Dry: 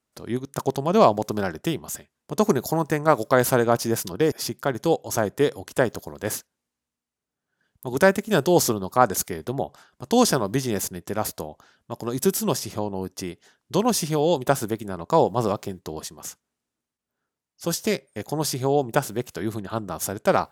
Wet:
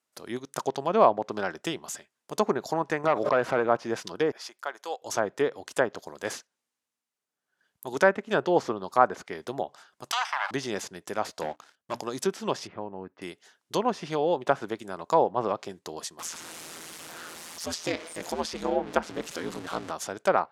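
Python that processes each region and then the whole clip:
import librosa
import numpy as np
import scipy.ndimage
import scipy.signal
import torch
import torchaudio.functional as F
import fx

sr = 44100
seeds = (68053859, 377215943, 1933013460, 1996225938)

y = fx.chain(x, sr, fx.clip_hard(threshold_db=-13.0),
    fx.pre_swell(db_per_s=36.0), at=(3.04, 3.69))
y = fx.chain(y, sr, fx.highpass(hz=870.0, slope=12),
    fx.high_shelf(hz=2100.0, db=-9.5), at=(4.38, 5.02))
y = fx.chain(y, sr, fx.lower_of_two(delay_ms=0.36),
    fx.steep_highpass(hz=790.0, slope=48),
    fx.env_flatten(amount_pct=70), at=(10.11, 10.51))
y = fx.chain(y, sr, fx.hum_notches(base_hz=60, count=5),
    fx.leveller(passes=3),
    fx.transient(attack_db=-3, sustain_db=-7), at=(11.41, 12.01))
y = fx.chain(y, sr, fx.lowpass(hz=2100.0, slope=24),
    fx.peak_eq(hz=700.0, db=-5.0, octaves=2.6), at=(12.67, 13.22))
y = fx.chain(y, sr, fx.zero_step(step_db=-30.5),
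    fx.low_shelf(hz=150.0, db=5.0),
    fx.ring_mod(carrier_hz=83.0), at=(16.19, 19.91))
y = fx.highpass(y, sr, hz=620.0, slope=6)
y = fx.env_lowpass_down(y, sr, base_hz=1900.0, full_db=-21.0)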